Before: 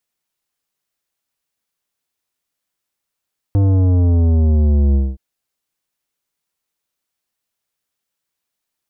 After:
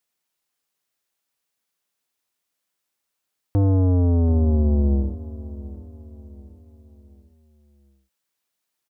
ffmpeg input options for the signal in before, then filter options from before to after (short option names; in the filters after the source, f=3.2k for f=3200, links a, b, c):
-f lavfi -i "aevalsrc='0.266*clip((1.62-t)/0.22,0,1)*tanh(3.98*sin(2*PI*100*1.62/log(65/100)*(exp(log(65/100)*t/1.62)-1)))/tanh(3.98)':d=1.62:s=44100"
-af "lowshelf=f=110:g=-8.5,aecho=1:1:732|1464|2196|2928:0.15|0.0628|0.0264|0.0111"